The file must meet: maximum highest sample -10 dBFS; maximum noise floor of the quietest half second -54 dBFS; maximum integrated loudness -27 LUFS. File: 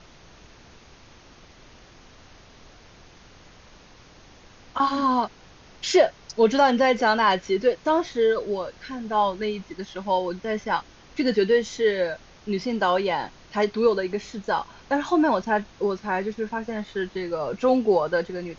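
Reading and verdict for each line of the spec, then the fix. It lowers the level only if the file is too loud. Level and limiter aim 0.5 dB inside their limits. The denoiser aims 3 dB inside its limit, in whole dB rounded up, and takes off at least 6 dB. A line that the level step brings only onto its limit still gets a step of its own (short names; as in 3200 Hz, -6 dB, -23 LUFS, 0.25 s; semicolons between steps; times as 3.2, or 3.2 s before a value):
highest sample -6.5 dBFS: fail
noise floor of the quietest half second -50 dBFS: fail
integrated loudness -24.0 LUFS: fail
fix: denoiser 6 dB, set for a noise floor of -50 dBFS; gain -3.5 dB; limiter -10.5 dBFS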